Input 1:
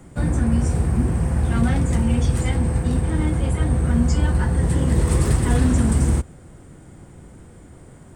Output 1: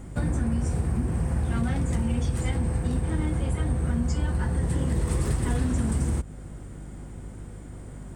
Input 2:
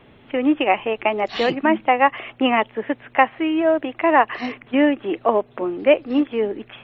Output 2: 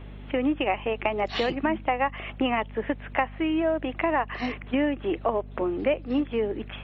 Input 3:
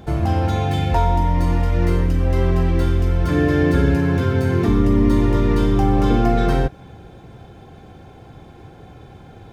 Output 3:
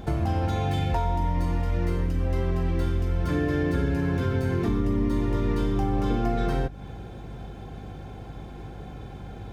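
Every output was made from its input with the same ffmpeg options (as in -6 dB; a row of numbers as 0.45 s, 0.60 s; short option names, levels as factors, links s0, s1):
-af "acompressor=threshold=0.0631:ratio=3,aeval=exprs='val(0)+0.01*(sin(2*PI*50*n/s)+sin(2*PI*2*50*n/s)/2+sin(2*PI*3*50*n/s)/3+sin(2*PI*4*50*n/s)/4+sin(2*PI*5*50*n/s)/5)':c=same"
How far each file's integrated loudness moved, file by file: -7.0 LU, -7.0 LU, -8.0 LU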